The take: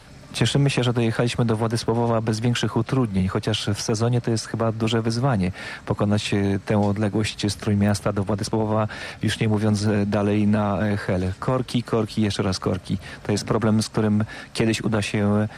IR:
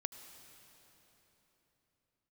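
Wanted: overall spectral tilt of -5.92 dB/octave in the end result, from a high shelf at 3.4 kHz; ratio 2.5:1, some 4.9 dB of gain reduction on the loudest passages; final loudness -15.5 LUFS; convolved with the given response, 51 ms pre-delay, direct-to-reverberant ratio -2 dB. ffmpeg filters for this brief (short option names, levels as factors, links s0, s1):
-filter_complex "[0:a]highshelf=f=3400:g=-4.5,acompressor=threshold=0.0631:ratio=2.5,asplit=2[s0][s1];[1:a]atrim=start_sample=2205,adelay=51[s2];[s1][s2]afir=irnorm=-1:irlink=0,volume=1.5[s3];[s0][s3]amix=inputs=2:normalize=0,volume=2.51"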